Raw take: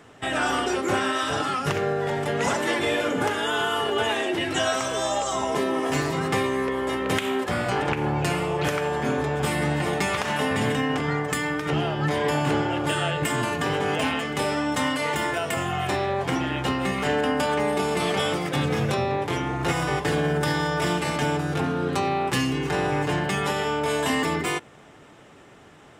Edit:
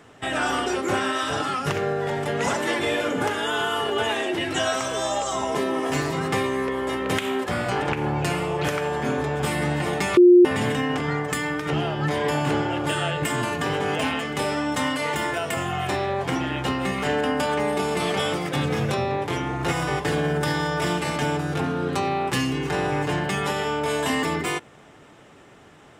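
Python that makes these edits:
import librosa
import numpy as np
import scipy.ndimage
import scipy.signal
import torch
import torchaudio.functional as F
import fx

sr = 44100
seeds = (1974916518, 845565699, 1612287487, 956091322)

y = fx.edit(x, sr, fx.bleep(start_s=10.17, length_s=0.28, hz=355.0, db=-8.0), tone=tone)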